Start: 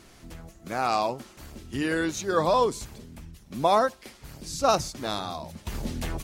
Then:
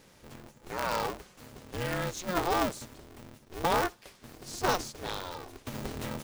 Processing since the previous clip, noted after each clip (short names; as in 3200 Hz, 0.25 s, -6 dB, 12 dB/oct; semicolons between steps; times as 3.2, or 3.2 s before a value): polarity switched at an audio rate 180 Hz; gain -6 dB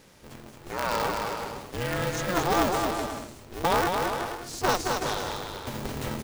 bouncing-ball echo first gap 0.22 s, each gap 0.7×, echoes 5; gain +3 dB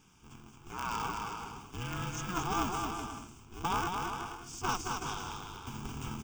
fixed phaser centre 2800 Hz, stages 8; gain -5 dB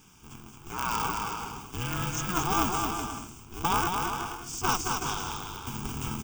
high shelf 10000 Hz +11.5 dB; gain +5.5 dB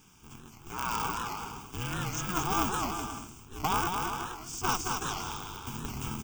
record warp 78 rpm, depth 160 cents; gain -2.5 dB